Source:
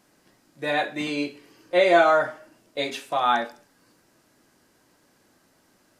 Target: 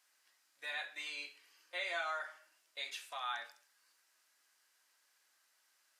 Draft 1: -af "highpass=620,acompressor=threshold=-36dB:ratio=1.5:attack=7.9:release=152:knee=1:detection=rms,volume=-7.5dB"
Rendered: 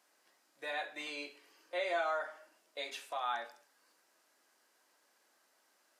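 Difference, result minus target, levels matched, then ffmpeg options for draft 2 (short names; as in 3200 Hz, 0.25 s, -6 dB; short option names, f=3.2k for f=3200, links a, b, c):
500 Hz band +7.5 dB
-af "highpass=1.5k,acompressor=threshold=-36dB:ratio=1.5:attack=7.9:release=152:knee=1:detection=rms,volume=-7.5dB"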